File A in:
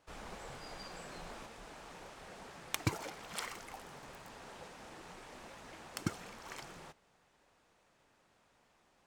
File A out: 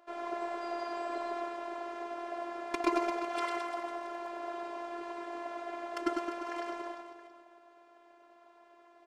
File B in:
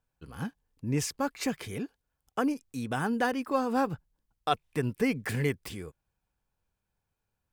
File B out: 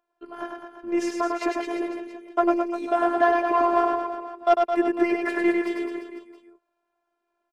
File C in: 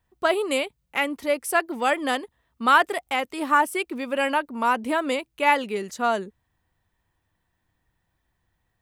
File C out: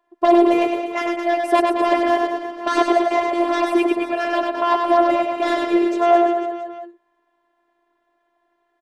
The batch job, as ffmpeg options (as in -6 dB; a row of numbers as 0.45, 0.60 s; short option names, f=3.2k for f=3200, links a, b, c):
-filter_complex "[0:a]acrossover=split=380[a][b];[a]acompressor=threshold=-42dB:ratio=6[c];[b]aeval=exprs='0.501*sin(PI/2*5.01*val(0)/0.501)':c=same[d];[c][d]amix=inputs=2:normalize=0,bandpass=f=430:t=q:w=0.94:csg=0,aecho=1:1:100|215|347.2|499.3|674.2:0.631|0.398|0.251|0.158|0.1,afftfilt=real='hypot(re,im)*cos(PI*b)':imag='0':win_size=512:overlap=0.75,volume=2dB"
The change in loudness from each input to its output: +8.5, +8.0, +5.5 LU